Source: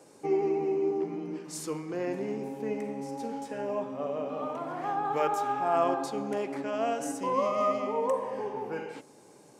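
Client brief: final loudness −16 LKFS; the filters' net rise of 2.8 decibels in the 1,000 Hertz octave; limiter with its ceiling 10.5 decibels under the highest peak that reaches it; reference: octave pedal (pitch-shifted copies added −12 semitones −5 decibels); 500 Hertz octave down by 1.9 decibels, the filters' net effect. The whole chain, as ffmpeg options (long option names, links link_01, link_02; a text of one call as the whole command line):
ffmpeg -i in.wav -filter_complex "[0:a]equalizer=frequency=500:width_type=o:gain=-4,equalizer=frequency=1000:width_type=o:gain=5,alimiter=limit=-23dB:level=0:latency=1,asplit=2[link_01][link_02];[link_02]asetrate=22050,aresample=44100,atempo=2,volume=-5dB[link_03];[link_01][link_03]amix=inputs=2:normalize=0,volume=16.5dB" out.wav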